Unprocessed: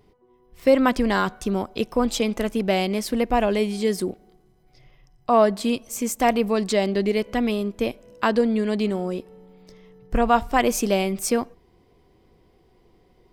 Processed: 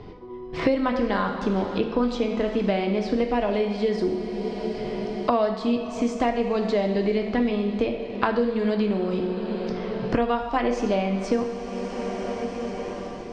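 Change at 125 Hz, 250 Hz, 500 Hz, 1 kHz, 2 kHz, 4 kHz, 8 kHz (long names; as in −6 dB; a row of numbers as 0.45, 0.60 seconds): +0.5 dB, −0.5 dB, −1.0 dB, −3.5 dB, −3.5 dB, −5.0 dB, below −15 dB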